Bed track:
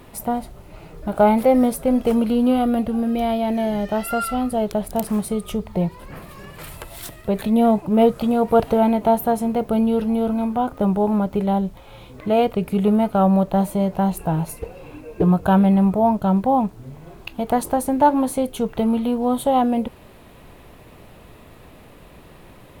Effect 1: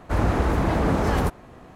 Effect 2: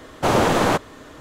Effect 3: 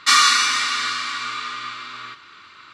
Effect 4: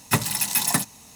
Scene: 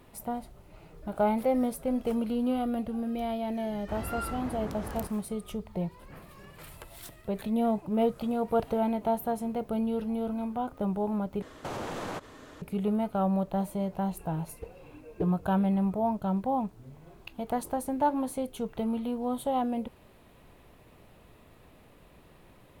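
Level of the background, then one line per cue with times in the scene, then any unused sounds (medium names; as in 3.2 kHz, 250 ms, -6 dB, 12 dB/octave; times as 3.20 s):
bed track -11 dB
3.78 s: add 1 -17 dB
11.42 s: replace with 2 -7 dB + compression, threshold -26 dBFS
not used: 3, 4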